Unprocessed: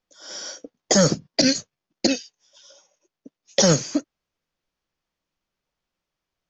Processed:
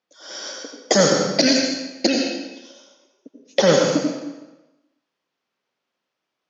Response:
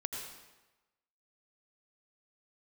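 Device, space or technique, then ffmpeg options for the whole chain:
supermarket ceiling speaker: -filter_complex "[0:a]asettb=1/sr,asplit=3[link_01][link_02][link_03];[link_01]atrim=end=2.094[link_04];[link_02]atrim=start=2.09:end=3.74,asetpts=PTS-STARTPTS,afade=type=in:duration=0.004:curve=qsin,afade=type=out:start_time=1.646:duration=0.004:curve=qsin,acrossover=split=4100[link_05][link_06];[link_06]acompressor=threshold=-32dB:ratio=4:attack=1:release=60[link_07];[link_05][link_07]amix=inputs=2:normalize=0[link_08];[link_03]atrim=start=3.736[link_09];[link_04][link_08]acrossfade=duration=0.004:curve1=hsin:curve2=qsin[link_10];[link_10][link_09]acrossfade=duration=0.004:curve1=qsin:curve2=hsin,highpass=240,lowpass=5200[link_11];[1:a]atrim=start_sample=2205[link_12];[link_11][link_12]afir=irnorm=-1:irlink=0,volume=4.5dB"

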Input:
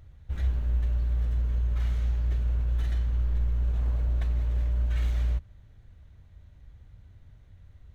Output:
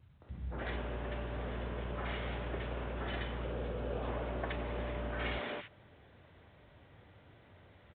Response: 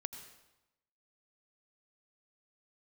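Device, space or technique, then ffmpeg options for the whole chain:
telephone: -filter_complex "[0:a]asettb=1/sr,asplit=3[link_01][link_02][link_03];[link_01]atrim=end=3.224[link_04];[link_02]atrim=start=3.22:end=3.8,asetpts=PTS-STARTPTS,afade=type=in:duration=0.004:curve=qsin,afade=type=out:start_time=0.576:duration=0.004:curve=qsin,equalizer=frequency=500:width_type=o:width=0.33:gain=8,equalizer=frequency=1000:width_type=o:width=0.33:gain=-5,equalizer=frequency=2000:width_type=o:width=0.33:gain=-6[link_05];[link_03]atrim=start=3.796[link_06];[link_04][link_05]acrossfade=duration=0.004:curve1=hsin:curve2=qsin[link_07];[link_07][link_06]acrossfade=duration=0.004:curve1=qsin:curve2=hsin,highpass=280,lowpass=3000,acrossover=split=200|1600[link_08][link_09][link_10];[link_09]adelay=220[link_11];[link_10]adelay=290[link_12];[link_08][link_11][link_12]amix=inputs=3:normalize=0,volume=10.5dB" -ar 8000 -c:a pcm_alaw

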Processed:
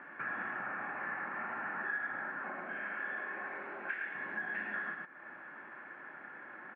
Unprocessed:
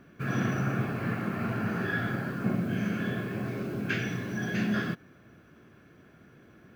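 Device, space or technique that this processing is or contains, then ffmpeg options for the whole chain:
bass amplifier: -filter_complex "[0:a]highpass=570,bandreject=frequency=680:width=12,asettb=1/sr,asplit=3[link_01][link_02][link_03];[link_01]atrim=end=2.394[link_04];[link_02]atrim=start=2.39:end=4.15,asetpts=PTS-STARTPTS,afade=type=in:duration=0.004:curve=qsin,afade=type=out:start_time=1.756:duration=0.004:curve=qsin,bass=frequency=250:gain=-10,treble=frequency=4000:gain=-1[link_05];[link_03]atrim=start=4.146[link_06];[link_04][link_05]acrossfade=duration=0.004:curve1=hsin:curve2=qsin[link_07];[link_07][link_06]acrossfade=duration=0.004:curve1=qsin:curve2=hsin,aecho=1:1:107:0.531,acompressor=threshold=-52dB:ratio=4,highpass=85,equalizer=frequency=91:width_type=q:width=4:gain=-9,equalizer=frequency=440:width_type=q:width=4:gain=-9,equalizer=frequency=880:width_type=q:width=4:gain=9,equalizer=frequency=1800:width_type=q:width=4:gain=8,lowpass=frequency=2100:width=0.5412,lowpass=frequency=2100:width=1.3066,volume=9dB"

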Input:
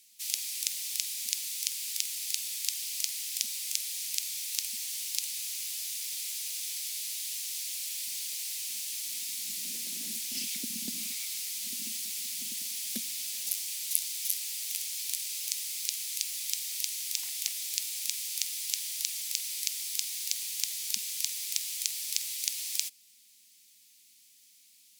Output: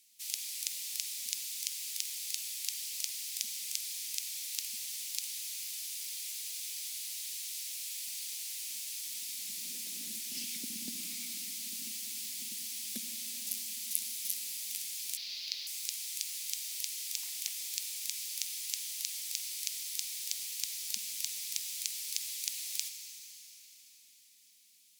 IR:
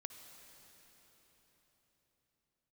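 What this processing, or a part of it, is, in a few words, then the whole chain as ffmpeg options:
cathedral: -filter_complex "[1:a]atrim=start_sample=2205[link_01];[0:a][link_01]afir=irnorm=-1:irlink=0,asettb=1/sr,asplit=3[link_02][link_03][link_04];[link_02]atrim=end=15.174[link_05];[link_03]atrim=start=15.17:end=15.67,asetpts=PTS-STARTPTS,afade=type=in:duration=0.004:curve=qsin,afade=type=out:start_time=0.496:duration=0.004:curve=qsin,highshelf=frequency=6200:width_type=q:width=3:gain=-12[link_06];[link_04]atrim=start=15.666[link_07];[link_05][link_06]acrossfade=duration=0.004:curve1=hsin:curve2=qsin[link_08];[link_08][link_07]acrossfade=duration=0.004:curve1=qsin:curve2=hsin"

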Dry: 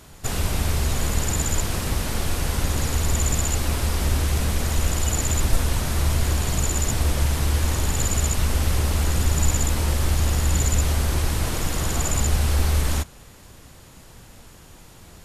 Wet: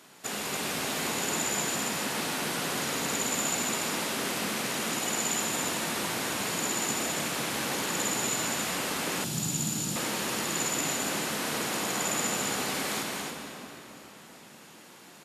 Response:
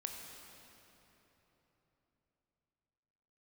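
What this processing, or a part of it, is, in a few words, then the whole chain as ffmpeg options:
stadium PA: -filter_complex "[0:a]highpass=frequency=190:width=0.5412,highpass=frequency=190:width=1.3066,equalizer=frequency=2300:width_type=o:width=2.2:gain=4,aecho=1:1:195.3|279.9:0.355|0.562[link_01];[1:a]atrim=start_sample=2205[link_02];[link_01][link_02]afir=irnorm=-1:irlink=0,asettb=1/sr,asplit=3[link_03][link_04][link_05];[link_03]atrim=end=9.244[link_06];[link_04]atrim=start=9.24:end=9.96,asetpts=PTS-STARTPTS,afade=type=in:duration=0.004:curve=qsin,afade=type=out:start_time=0.716:duration=0.004:curve=qsin,equalizer=frequency=125:width_type=o:width=1:gain=11,equalizer=frequency=500:width_type=o:width=1:gain=-9,equalizer=frequency=1000:width_type=o:width=1:gain=-7,equalizer=frequency=2000:width_type=o:width=1:gain=-10[link_07];[link_05]atrim=start=9.956[link_08];[link_06][link_07]acrossfade=duration=0.004:curve1=hsin:curve2=qsin[link_09];[link_09][link_08]acrossfade=duration=0.004:curve1=qsin:curve2=hsin,volume=-3.5dB"

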